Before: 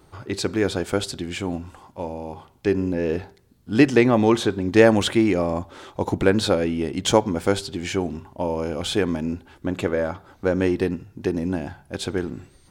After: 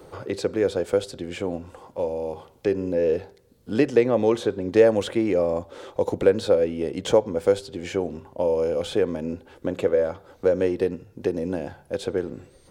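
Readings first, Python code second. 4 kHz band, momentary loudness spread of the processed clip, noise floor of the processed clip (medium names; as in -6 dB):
-8.0 dB, 12 LU, -56 dBFS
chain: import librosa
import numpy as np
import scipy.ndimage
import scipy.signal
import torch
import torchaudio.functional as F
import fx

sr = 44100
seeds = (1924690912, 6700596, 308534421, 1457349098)

y = fx.peak_eq(x, sr, hz=500.0, db=14.0, octaves=0.54)
y = fx.band_squash(y, sr, depth_pct=40)
y = y * librosa.db_to_amplitude(-7.5)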